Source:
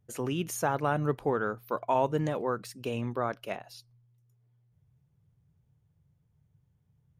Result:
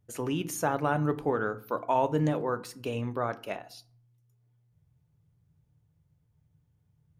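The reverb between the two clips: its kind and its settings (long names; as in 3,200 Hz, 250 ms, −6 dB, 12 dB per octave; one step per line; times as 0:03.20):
feedback delay network reverb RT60 0.49 s, low-frequency decay 1.3×, high-frequency decay 0.55×, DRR 11 dB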